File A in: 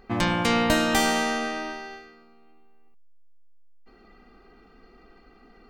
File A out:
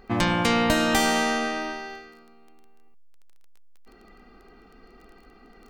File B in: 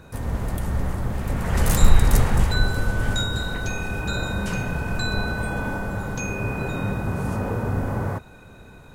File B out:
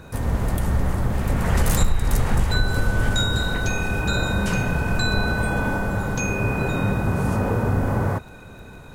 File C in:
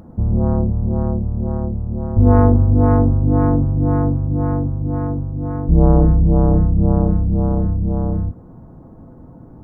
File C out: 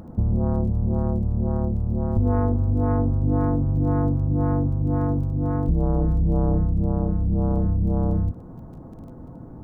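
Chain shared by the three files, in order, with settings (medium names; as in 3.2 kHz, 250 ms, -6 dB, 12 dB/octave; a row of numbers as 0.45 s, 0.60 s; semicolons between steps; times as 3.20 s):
compression 6:1, threshold -18 dBFS; crackle 13 per s -44 dBFS; normalise loudness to -23 LUFS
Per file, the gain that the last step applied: +2.0 dB, +4.0 dB, +0.5 dB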